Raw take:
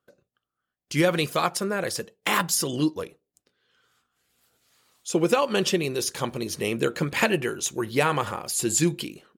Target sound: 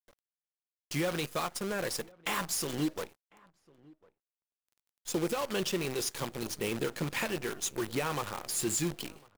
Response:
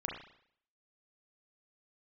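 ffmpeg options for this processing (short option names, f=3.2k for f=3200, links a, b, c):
-filter_complex "[0:a]alimiter=limit=-14.5dB:level=0:latency=1:release=402,acrusher=bits=6:dc=4:mix=0:aa=0.000001,asoftclip=type=tanh:threshold=-17.5dB,asplit=2[a][b];[b]adelay=1050,volume=-25dB,highshelf=f=4k:g=-23.6[c];[a][c]amix=inputs=2:normalize=0,volume=-5dB"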